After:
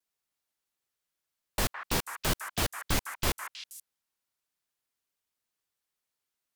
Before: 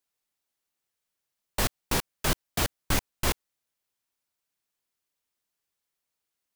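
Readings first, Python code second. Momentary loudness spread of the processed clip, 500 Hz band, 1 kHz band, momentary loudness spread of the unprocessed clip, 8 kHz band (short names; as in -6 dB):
13 LU, -2.5 dB, -1.5 dB, 3 LU, -2.0 dB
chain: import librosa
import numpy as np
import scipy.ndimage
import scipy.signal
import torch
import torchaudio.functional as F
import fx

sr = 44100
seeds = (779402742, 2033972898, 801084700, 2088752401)

y = fx.echo_stepped(x, sr, ms=160, hz=1400.0, octaves=1.4, feedback_pct=70, wet_db=-3)
y = fx.vibrato(y, sr, rate_hz=0.41, depth_cents=15.0)
y = y * librosa.db_to_amplitude(-2.5)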